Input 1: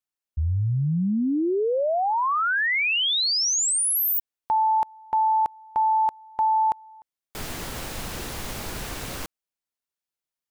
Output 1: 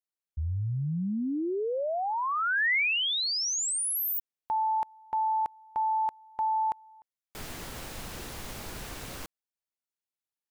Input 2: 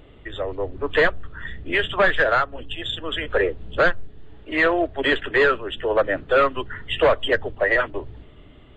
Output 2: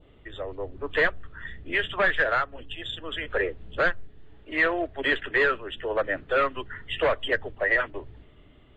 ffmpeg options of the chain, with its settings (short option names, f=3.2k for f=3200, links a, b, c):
-af "adynamicequalizer=threshold=0.0251:dfrequency=2000:dqfactor=1.5:tfrequency=2000:tqfactor=1.5:attack=5:release=100:ratio=0.375:range=2.5:mode=boostabove:tftype=bell,volume=-7dB"